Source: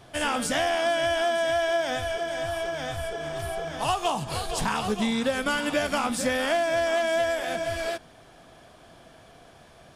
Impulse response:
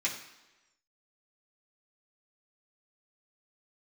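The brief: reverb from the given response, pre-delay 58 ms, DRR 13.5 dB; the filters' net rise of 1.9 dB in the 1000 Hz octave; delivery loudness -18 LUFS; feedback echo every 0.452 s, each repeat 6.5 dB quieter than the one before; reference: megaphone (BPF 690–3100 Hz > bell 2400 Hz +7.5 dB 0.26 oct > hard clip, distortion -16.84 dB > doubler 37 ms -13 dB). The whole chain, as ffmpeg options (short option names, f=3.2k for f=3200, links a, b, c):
-filter_complex "[0:a]equalizer=f=1k:t=o:g=5.5,aecho=1:1:452|904|1356|1808|2260|2712:0.473|0.222|0.105|0.0491|0.0231|0.0109,asplit=2[a][b];[1:a]atrim=start_sample=2205,adelay=58[c];[b][c]afir=irnorm=-1:irlink=0,volume=-20dB[d];[a][d]amix=inputs=2:normalize=0,highpass=690,lowpass=3.1k,equalizer=f=2.4k:t=o:w=0.26:g=7.5,asoftclip=type=hard:threshold=-20dB,asplit=2[e][f];[f]adelay=37,volume=-13dB[g];[e][g]amix=inputs=2:normalize=0,volume=8dB"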